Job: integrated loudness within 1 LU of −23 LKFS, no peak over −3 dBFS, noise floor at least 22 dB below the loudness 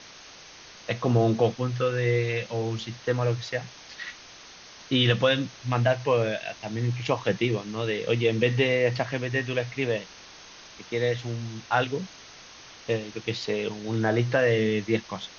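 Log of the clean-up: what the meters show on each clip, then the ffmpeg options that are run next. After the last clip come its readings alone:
background noise floor −48 dBFS; target noise floor −49 dBFS; integrated loudness −26.5 LKFS; sample peak −8.5 dBFS; target loudness −23.0 LKFS
→ -af "afftdn=noise_reduction=6:noise_floor=-48"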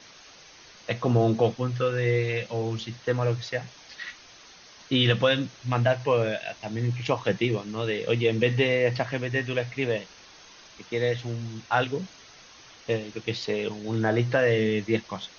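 background noise floor −51 dBFS; integrated loudness −26.5 LKFS; sample peak −8.5 dBFS; target loudness −23.0 LKFS
→ -af "volume=3.5dB"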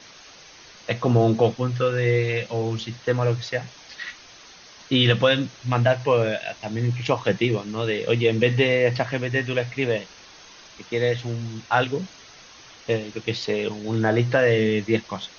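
integrated loudness −23.0 LKFS; sample peak −5.0 dBFS; background noise floor −47 dBFS

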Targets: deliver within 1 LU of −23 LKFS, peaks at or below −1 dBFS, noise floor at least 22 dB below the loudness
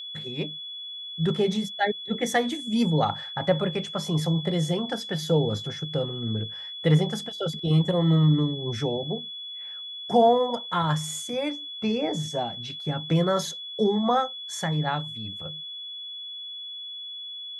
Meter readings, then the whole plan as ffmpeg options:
interfering tone 3,400 Hz; level of the tone −35 dBFS; integrated loudness −26.5 LKFS; sample peak −9.5 dBFS; target loudness −23.0 LKFS
→ -af "bandreject=frequency=3400:width=30"
-af "volume=3.5dB"

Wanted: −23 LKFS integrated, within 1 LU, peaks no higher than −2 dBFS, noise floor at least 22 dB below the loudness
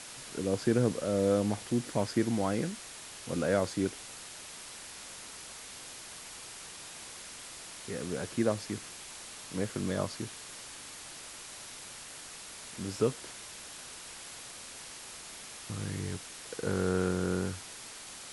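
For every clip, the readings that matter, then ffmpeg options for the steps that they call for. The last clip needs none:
background noise floor −47 dBFS; target noise floor −58 dBFS; integrated loudness −35.5 LKFS; sample peak −14.5 dBFS; target loudness −23.0 LKFS
→ -af "afftdn=noise_reduction=11:noise_floor=-47"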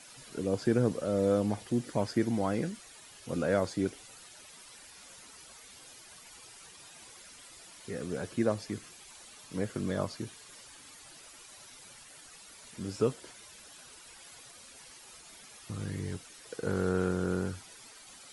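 background noise floor −53 dBFS; target noise floor −55 dBFS
→ -af "afftdn=noise_reduction=6:noise_floor=-53"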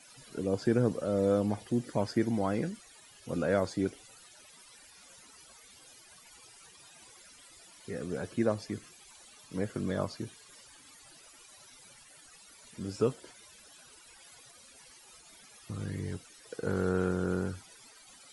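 background noise floor −56 dBFS; integrated loudness −33.0 LKFS; sample peak −14.5 dBFS; target loudness −23.0 LKFS
→ -af "volume=10dB"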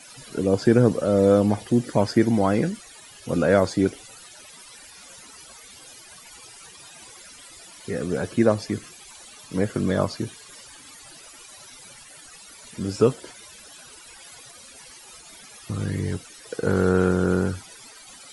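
integrated loudness −23.0 LKFS; sample peak −4.5 dBFS; background noise floor −46 dBFS

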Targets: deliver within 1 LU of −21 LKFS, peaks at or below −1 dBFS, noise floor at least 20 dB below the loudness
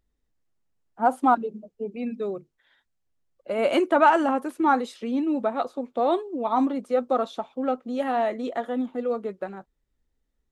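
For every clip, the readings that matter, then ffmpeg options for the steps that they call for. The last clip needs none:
integrated loudness −25.0 LKFS; sample peak −6.5 dBFS; target loudness −21.0 LKFS
→ -af "volume=4dB"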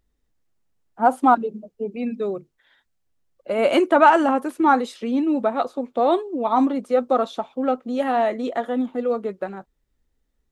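integrated loudness −21.0 LKFS; sample peak −2.5 dBFS; background noise floor −72 dBFS

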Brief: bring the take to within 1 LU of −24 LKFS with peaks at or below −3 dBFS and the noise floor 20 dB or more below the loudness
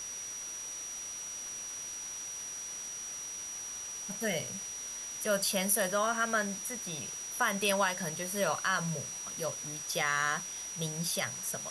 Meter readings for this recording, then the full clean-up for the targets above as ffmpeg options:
interfering tone 5,800 Hz; level of the tone −39 dBFS; background noise floor −41 dBFS; target noise floor −54 dBFS; integrated loudness −33.5 LKFS; sample peak −15.0 dBFS; target loudness −24.0 LKFS
→ -af "bandreject=frequency=5800:width=30"
-af "afftdn=noise_reduction=13:noise_floor=-41"
-af "volume=9.5dB"

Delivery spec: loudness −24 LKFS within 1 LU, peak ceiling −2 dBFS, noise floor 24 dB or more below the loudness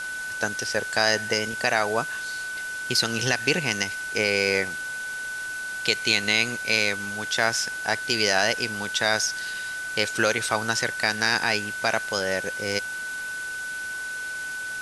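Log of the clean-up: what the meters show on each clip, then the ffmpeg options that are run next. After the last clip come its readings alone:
interfering tone 1,500 Hz; level of the tone −30 dBFS; background noise floor −33 dBFS; target noise floor −49 dBFS; integrated loudness −24.5 LKFS; sample peak −5.0 dBFS; target loudness −24.0 LKFS
→ -af "bandreject=frequency=1500:width=30"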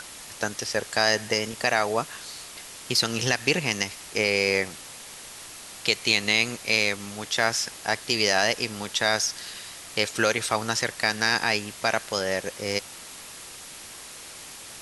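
interfering tone none found; background noise floor −43 dBFS; target noise floor −49 dBFS
→ -af "afftdn=noise_reduction=6:noise_floor=-43"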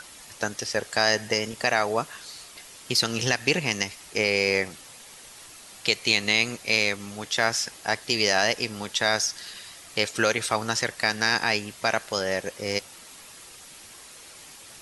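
background noise floor −47 dBFS; target noise floor −49 dBFS
→ -af "afftdn=noise_reduction=6:noise_floor=-47"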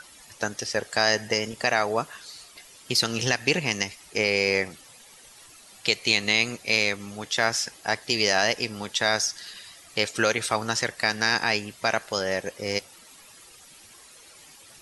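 background noise floor −51 dBFS; integrated loudness −25.0 LKFS; sample peak −5.0 dBFS; target loudness −24.0 LKFS
→ -af "volume=1dB"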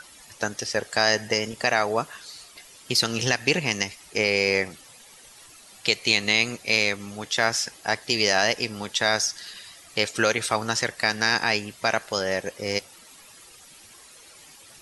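integrated loudness −24.0 LKFS; sample peak −4.0 dBFS; background noise floor −50 dBFS

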